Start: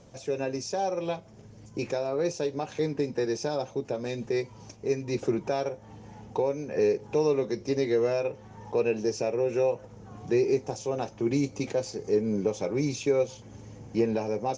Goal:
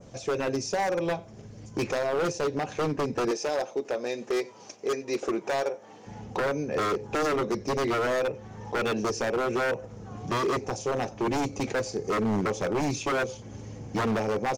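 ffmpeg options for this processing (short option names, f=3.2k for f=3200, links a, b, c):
-filter_complex "[0:a]bandreject=f=920:w=17,aecho=1:1:92:0.0668,adynamicequalizer=threshold=0.00316:dfrequency=3900:dqfactor=0.84:tfrequency=3900:tqfactor=0.84:attack=5:release=100:ratio=0.375:range=2.5:mode=cutabove:tftype=bell,asettb=1/sr,asplit=3[a][b][c];[a]atrim=end=3.314[d];[b]atrim=start=3.31:end=6.07,asetpts=PTS-STARTPTS,afade=t=in:d=0.004:c=qsin,afade=t=out:st=2.756:d=0.004:c=qsin,highpass=380[e];[c]atrim=start=6.066[f];[d][e]acrossfade=d=0.004:c1=hsin:c2=qsin[g];[g][f]acrossfade=d=0.004:c1=qsin:c2=hsin,aeval=exprs='0.0531*(abs(mod(val(0)/0.0531+3,4)-2)-1)':c=same,volume=4.5dB"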